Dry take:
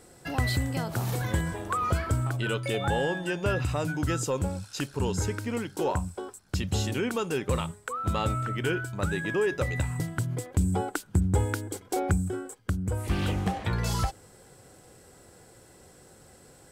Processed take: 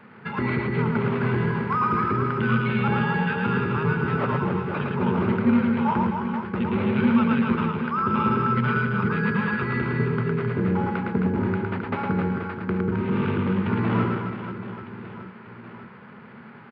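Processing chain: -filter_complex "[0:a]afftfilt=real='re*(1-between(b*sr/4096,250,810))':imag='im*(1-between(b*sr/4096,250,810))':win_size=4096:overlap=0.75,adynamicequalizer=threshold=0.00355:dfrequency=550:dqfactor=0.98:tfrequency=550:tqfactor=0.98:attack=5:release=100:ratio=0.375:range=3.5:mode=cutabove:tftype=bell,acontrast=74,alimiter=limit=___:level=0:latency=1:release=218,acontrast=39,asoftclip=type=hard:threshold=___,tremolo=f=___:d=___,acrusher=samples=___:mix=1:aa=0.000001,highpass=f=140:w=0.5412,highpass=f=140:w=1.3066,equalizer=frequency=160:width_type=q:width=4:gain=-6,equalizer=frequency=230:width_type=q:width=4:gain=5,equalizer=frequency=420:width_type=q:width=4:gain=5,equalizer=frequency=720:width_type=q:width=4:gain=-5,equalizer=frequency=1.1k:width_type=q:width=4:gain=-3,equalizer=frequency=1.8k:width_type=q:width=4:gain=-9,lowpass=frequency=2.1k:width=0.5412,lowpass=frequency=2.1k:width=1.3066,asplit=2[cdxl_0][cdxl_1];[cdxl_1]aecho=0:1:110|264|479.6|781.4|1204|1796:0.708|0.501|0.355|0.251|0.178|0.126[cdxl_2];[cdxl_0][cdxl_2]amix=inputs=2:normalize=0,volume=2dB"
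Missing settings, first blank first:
-15.5dB, -15.5dB, 280, 0.462, 7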